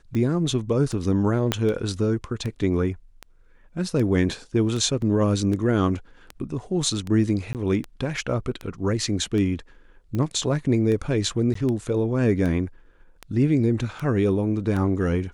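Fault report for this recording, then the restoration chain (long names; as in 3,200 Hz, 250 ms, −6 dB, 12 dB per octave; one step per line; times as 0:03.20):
scratch tick 78 rpm −18 dBFS
0:01.52: click −7 dBFS
0:05.02: drop-out 2.1 ms
0:07.53–0:07.55: drop-out 18 ms
0:11.54–0:11.55: drop-out 14 ms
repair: click removal
repair the gap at 0:05.02, 2.1 ms
repair the gap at 0:07.53, 18 ms
repair the gap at 0:11.54, 14 ms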